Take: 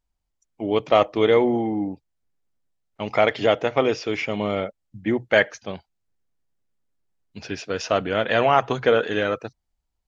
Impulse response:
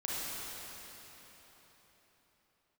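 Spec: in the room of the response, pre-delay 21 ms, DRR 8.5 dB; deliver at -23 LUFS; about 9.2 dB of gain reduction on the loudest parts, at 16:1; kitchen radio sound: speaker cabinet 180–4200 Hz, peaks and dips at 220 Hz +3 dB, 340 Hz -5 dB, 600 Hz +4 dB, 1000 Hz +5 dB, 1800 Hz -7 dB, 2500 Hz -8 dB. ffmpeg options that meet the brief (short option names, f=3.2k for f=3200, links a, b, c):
-filter_complex "[0:a]acompressor=threshold=-21dB:ratio=16,asplit=2[a][b];[1:a]atrim=start_sample=2205,adelay=21[c];[b][c]afir=irnorm=-1:irlink=0,volume=-13.5dB[d];[a][d]amix=inputs=2:normalize=0,highpass=180,equalizer=f=220:t=q:w=4:g=3,equalizer=f=340:t=q:w=4:g=-5,equalizer=f=600:t=q:w=4:g=4,equalizer=f=1k:t=q:w=4:g=5,equalizer=f=1.8k:t=q:w=4:g=-7,equalizer=f=2.5k:t=q:w=4:g=-8,lowpass=f=4.2k:w=0.5412,lowpass=f=4.2k:w=1.3066,volume=4.5dB"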